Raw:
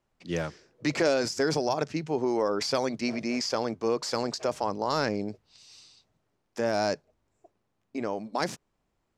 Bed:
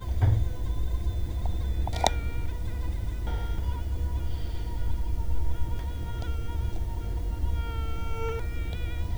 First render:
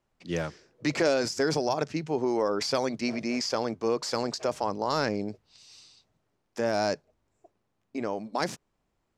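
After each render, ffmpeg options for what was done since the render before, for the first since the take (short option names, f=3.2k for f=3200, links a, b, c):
-af anull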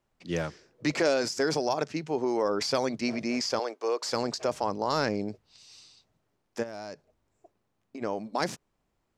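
-filter_complex "[0:a]asettb=1/sr,asplit=3[a][b][c];[a]atrim=end=0.914[d];[b]atrim=start=0.91:end=2.45,asetpts=PTS-STARTPTS,afade=t=in:d=0.004:c=qsin,afade=t=out:st=1.536:d=0.004:c=qsin,lowshelf=f=120:g=-9.5[e];[c]atrim=start=2.446[f];[d][e]acrossfade=d=0.004:c1=hsin:c2=qsin[g];[g][f]acrossfade=d=0.004:c1=qsin:c2=hsin,asettb=1/sr,asplit=3[h][i][j];[h]atrim=end=3.594[k];[i]atrim=start=3.59:end=4.05,asetpts=PTS-STARTPTS,afade=t=in:d=0.004:c=qsin,afade=t=out:st=0.456:d=0.004:c=qsin,highpass=f=400:w=0.5412,highpass=f=400:w=1.3066[l];[j]atrim=start=4.046[m];[k][l]acrossfade=d=0.004:c1=hsin:c2=qsin[n];[n][m]acrossfade=d=0.004:c1=qsin:c2=hsin,asplit=3[o][p][q];[o]afade=t=out:st=6.62:d=0.02[r];[p]acompressor=threshold=-37dB:ratio=5:attack=3.2:release=140:knee=1:detection=peak,afade=t=in:st=6.62:d=0.02,afade=t=out:st=8.01:d=0.02[s];[q]afade=t=in:st=8.01:d=0.02[t];[r][s][t]amix=inputs=3:normalize=0"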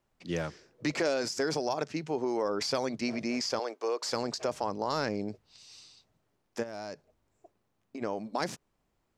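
-af "acompressor=threshold=-32dB:ratio=1.5"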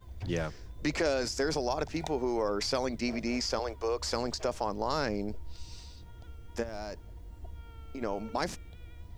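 -filter_complex "[1:a]volume=-16.5dB[a];[0:a][a]amix=inputs=2:normalize=0"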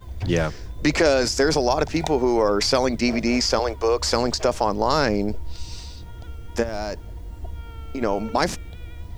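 -af "volume=11dB"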